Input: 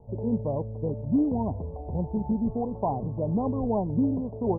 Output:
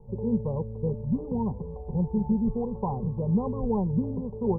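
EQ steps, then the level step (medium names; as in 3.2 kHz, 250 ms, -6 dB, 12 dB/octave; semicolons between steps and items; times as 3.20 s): bass shelf 160 Hz +9.5 dB; static phaser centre 440 Hz, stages 8; 0.0 dB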